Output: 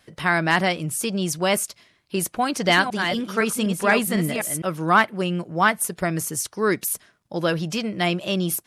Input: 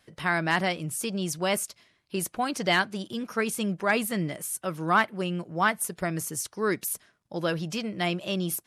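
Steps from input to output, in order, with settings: 2.40–4.62 s: chunks repeated in reverse 252 ms, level -6.5 dB; trim +5.5 dB

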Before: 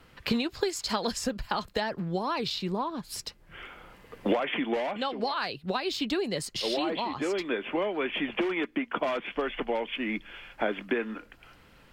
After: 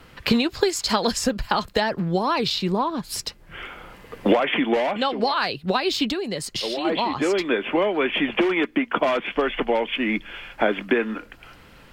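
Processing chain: 6.09–6.85 s: compression 4:1, threshold -33 dBFS, peak gain reduction 7 dB; trim +8 dB

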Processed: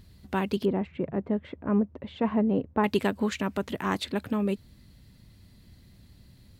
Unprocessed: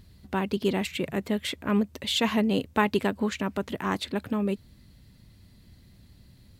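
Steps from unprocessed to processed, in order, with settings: 0.65–2.84 s: low-pass 1 kHz 12 dB/octave

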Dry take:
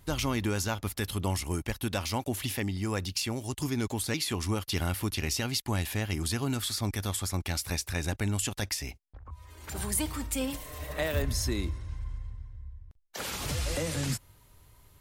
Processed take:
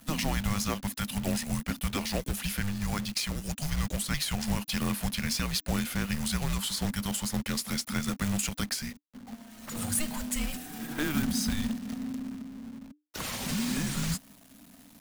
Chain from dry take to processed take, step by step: companded quantiser 4-bit; frequency shift -300 Hz

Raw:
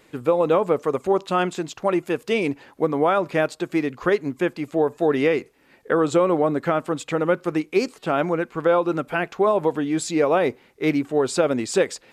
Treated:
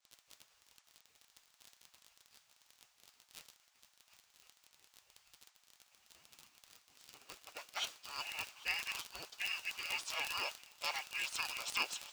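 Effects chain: four frequency bands reordered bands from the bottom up 2143; multi-head delay 396 ms, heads second and third, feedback 53%, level -16 dB; band-pass sweep 280 Hz -> 1.9 kHz, 5.76–8.13 s; dynamic bell 210 Hz, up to -5 dB, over -52 dBFS, Q 0.98; bit crusher 11-bit; spectral gate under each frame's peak -30 dB weak; crackle 35 per s -35 dBFS; resonant high shelf 2.5 kHz +6 dB, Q 1.5; band noise 680–7600 Hz -60 dBFS; expander -45 dBFS; trim +5 dB

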